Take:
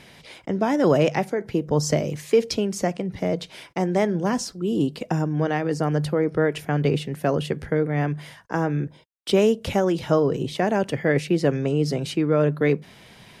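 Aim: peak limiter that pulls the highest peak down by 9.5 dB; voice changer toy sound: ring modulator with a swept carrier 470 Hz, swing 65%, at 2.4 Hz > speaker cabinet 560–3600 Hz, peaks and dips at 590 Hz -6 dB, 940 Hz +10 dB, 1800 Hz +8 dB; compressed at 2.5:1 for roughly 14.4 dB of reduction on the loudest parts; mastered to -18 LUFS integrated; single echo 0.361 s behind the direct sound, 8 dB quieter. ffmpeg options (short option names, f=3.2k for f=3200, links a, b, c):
-af "acompressor=threshold=-36dB:ratio=2.5,alimiter=level_in=4dB:limit=-24dB:level=0:latency=1,volume=-4dB,aecho=1:1:361:0.398,aeval=exprs='val(0)*sin(2*PI*470*n/s+470*0.65/2.4*sin(2*PI*2.4*n/s))':c=same,highpass=560,equalizer=f=590:t=q:w=4:g=-6,equalizer=f=940:t=q:w=4:g=10,equalizer=f=1.8k:t=q:w=4:g=8,lowpass=f=3.6k:w=0.5412,lowpass=f=3.6k:w=1.3066,volume=21.5dB"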